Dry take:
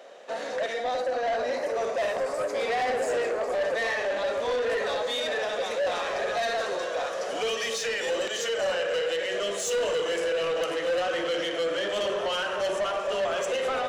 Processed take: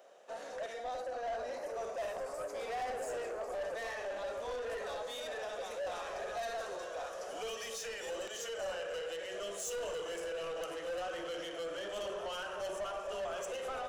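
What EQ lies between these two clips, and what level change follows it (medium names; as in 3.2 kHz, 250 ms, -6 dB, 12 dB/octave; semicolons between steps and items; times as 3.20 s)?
ten-band graphic EQ 125 Hz -8 dB, 250 Hz -10 dB, 500 Hz -7 dB, 1 kHz -5 dB, 2 kHz -10 dB, 4 kHz -10 dB, 8 kHz -4 dB; -2.0 dB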